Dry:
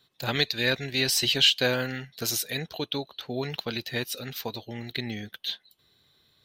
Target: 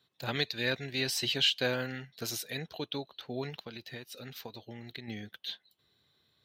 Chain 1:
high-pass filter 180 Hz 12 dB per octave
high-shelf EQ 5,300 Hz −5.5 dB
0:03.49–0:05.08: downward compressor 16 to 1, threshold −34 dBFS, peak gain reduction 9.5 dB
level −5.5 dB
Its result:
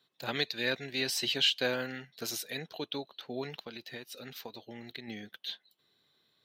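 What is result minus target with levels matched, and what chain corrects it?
125 Hz band −6.0 dB
high-pass filter 61 Hz 12 dB per octave
high-shelf EQ 5,300 Hz −5.5 dB
0:03.49–0:05.08: downward compressor 16 to 1, threshold −34 dBFS, peak gain reduction 10.5 dB
level −5.5 dB

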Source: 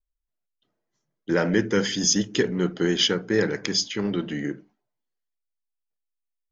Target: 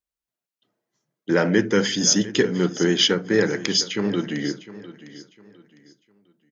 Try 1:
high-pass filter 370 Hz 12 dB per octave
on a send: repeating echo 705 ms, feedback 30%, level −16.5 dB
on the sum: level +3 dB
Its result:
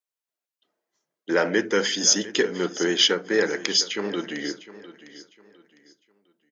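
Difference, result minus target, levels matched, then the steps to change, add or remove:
125 Hz band −11.0 dB
change: high-pass filter 110 Hz 12 dB per octave

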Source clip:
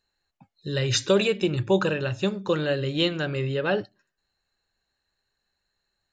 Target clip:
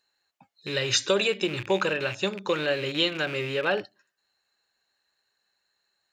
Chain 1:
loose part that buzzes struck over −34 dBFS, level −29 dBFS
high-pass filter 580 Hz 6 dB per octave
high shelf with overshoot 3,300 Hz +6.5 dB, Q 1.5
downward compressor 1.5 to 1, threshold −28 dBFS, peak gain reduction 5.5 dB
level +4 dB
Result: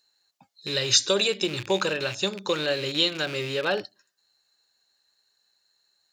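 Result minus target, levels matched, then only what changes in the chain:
8,000 Hz band +4.5 dB
remove: high shelf with overshoot 3,300 Hz +6.5 dB, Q 1.5

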